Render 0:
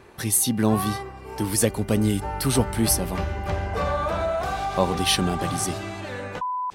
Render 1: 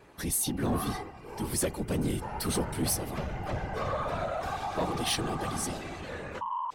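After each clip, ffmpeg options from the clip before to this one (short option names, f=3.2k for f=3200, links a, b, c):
-af "bandreject=f=60:t=h:w=6,bandreject=f=120:t=h:w=6,bandreject=f=180:t=h:w=6,afftfilt=real='hypot(re,im)*cos(2*PI*random(0))':imag='hypot(re,im)*sin(2*PI*random(1))':win_size=512:overlap=0.75,asoftclip=type=tanh:threshold=-22dB"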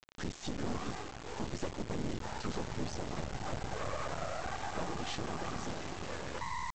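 -af "highshelf=f=3.5k:g=-12,acompressor=threshold=-37dB:ratio=2.5,aresample=16000,acrusher=bits=5:dc=4:mix=0:aa=0.000001,aresample=44100,volume=3.5dB"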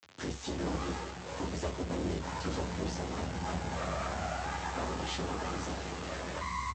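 -filter_complex "[0:a]afreqshift=64,asplit=2[a][b];[b]aecho=0:1:11|23|61:0.631|0.596|0.316[c];[a][c]amix=inputs=2:normalize=0"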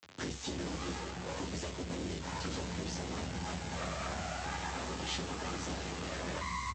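-filter_complex "[0:a]equalizer=f=170:t=o:w=2.6:g=3.5,acrossover=split=1900[a][b];[a]alimiter=level_in=8dB:limit=-24dB:level=0:latency=1:release=385,volume=-8dB[c];[c][b]amix=inputs=2:normalize=0,volume=1.5dB"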